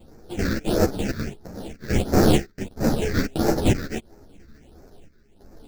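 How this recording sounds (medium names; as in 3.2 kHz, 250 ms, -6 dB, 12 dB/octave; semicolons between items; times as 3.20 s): aliases and images of a low sample rate 1.1 kHz, jitter 20%; phasing stages 6, 1.5 Hz, lowest notch 760–3100 Hz; chopped level 0.74 Hz, depth 65%, duty 75%; a shimmering, thickened sound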